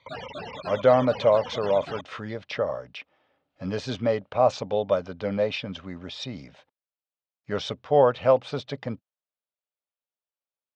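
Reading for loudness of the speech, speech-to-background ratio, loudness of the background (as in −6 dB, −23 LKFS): −25.5 LKFS, 12.0 dB, −37.5 LKFS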